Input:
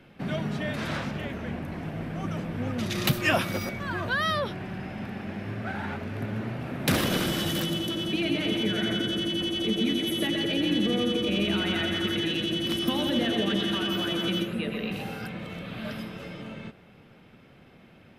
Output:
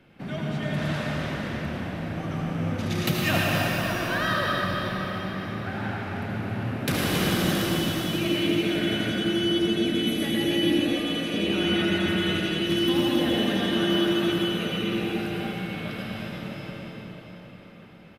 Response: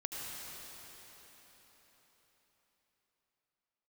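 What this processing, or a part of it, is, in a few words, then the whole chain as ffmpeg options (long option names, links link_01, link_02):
cathedral: -filter_complex "[0:a]asettb=1/sr,asplit=3[link_01][link_02][link_03];[link_01]atrim=end=10.804[link_04];[link_02]atrim=start=10.8:end=11.34,asetpts=PTS-STARTPTS,afade=type=in:duration=0.004:curve=qsin,afade=type=out:start_time=0.536:duration=0.004:curve=qsin,highpass=frequency=560:width=0.5412,highpass=frequency=560:width=1.3066[link_05];[link_03]atrim=start=11.336[link_06];[link_04][link_05]acrossfade=duration=0.004:curve1=hsin:curve2=qsin[link_07];[link_07][link_06]acrossfade=duration=0.004:curve1=qsin:curve2=hsin,aecho=1:1:107.9|274.1:0.282|0.316[link_08];[1:a]atrim=start_sample=2205[link_09];[link_08][link_09]afir=irnorm=-1:irlink=0"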